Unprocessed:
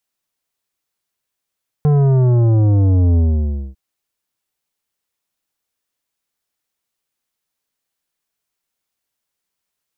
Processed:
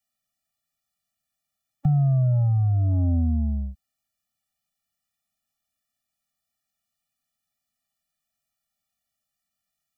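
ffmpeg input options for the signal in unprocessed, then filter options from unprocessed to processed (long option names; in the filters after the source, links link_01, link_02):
-f lavfi -i "aevalsrc='0.282*clip((1.9-t)/0.58,0,1)*tanh(3.55*sin(2*PI*150*1.9/log(65/150)*(exp(log(65/150)*t/1.9)-1)))/tanh(3.55)':duration=1.9:sample_rate=44100"
-filter_complex "[0:a]acrossover=split=140|980[link_01][link_02][link_03];[link_01]acompressor=threshold=-25dB:ratio=4[link_04];[link_02]acompressor=threshold=-23dB:ratio=4[link_05];[link_03]acompressor=threshold=-56dB:ratio=4[link_06];[link_04][link_05][link_06]amix=inputs=3:normalize=0,afftfilt=real='re*eq(mod(floor(b*sr/1024/280),2),0)':imag='im*eq(mod(floor(b*sr/1024/280),2),0)':win_size=1024:overlap=0.75"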